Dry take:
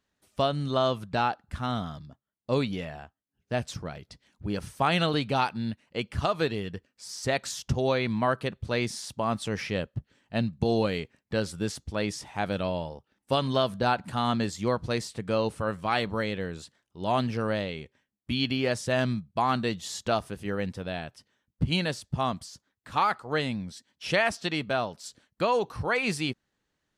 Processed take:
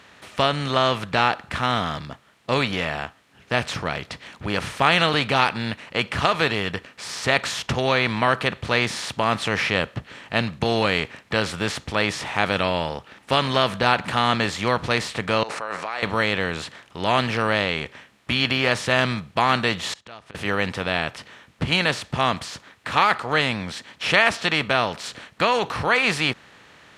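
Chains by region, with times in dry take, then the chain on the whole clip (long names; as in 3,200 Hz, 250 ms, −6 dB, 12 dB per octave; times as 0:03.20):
0:15.43–0:16.03: parametric band 3,200 Hz −15 dB 0.46 octaves + compressor whose output falls as the input rises −39 dBFS + Chebyshev band-pass filter 590–6,300 Hz
0:19.93–0:20.35: gate with flip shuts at −29 dBFS, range −36 dB + low-pass filter 8,500 Hz
whole clip: compressor on every frequency bin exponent 0.6; high-pass filter 60 Hz; parametric band 2,200 Hz +8 dB 2.3 octaves; level −1 dB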